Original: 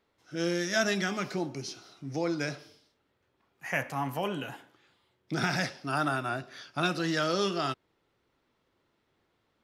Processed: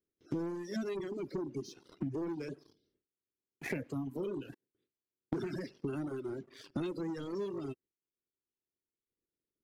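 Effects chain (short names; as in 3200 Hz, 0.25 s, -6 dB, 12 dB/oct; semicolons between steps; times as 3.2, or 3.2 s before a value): bin magnitudes rounded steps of 30 dB; 4.54–5.33 auto swell 0.662 s; gate with hold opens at -59 dBFS; resonant low shelf 560 Hz +13 dB, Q 3; sample leveller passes 2; compressor 8:1, threshold -32 dBFS, peak gain reduction 22.5 dB; reverb removal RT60 1.5 s; gain -3 dB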